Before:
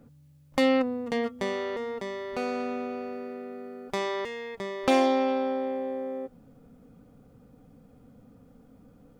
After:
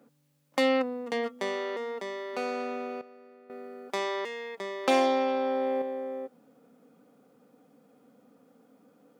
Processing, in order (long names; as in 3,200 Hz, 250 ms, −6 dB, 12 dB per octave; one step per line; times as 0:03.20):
Bessel high-pass filter 320 Hz, order 4
0:03.01–0:03.50: tuned comb filter 610 Hz, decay 0.56 s, mix 80%
0:05.34–0:05.82: envelope flattener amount 100%